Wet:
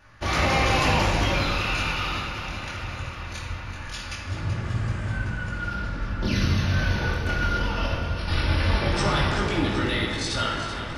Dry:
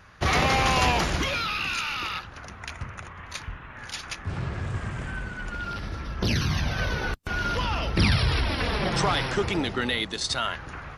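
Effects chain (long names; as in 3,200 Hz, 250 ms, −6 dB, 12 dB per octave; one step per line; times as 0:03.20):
0:05.75–0:06.32: high-shelf EQ 6,900 Hz −10 dB
0:07.26–0:08.28: compressor whose output falls as the input rises −29 dBFS, ratio −0.5
chorus effect 0.2 Hz, delay 18 ms, depth 6.2 ms
delay that swaps between a low-pass and a high-pass 191 ms, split 2,100 Hz, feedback 84%, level −9 dB
rectangular room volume 2,000 cubic metres, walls mixed, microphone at 2.5 metres
level −1 dB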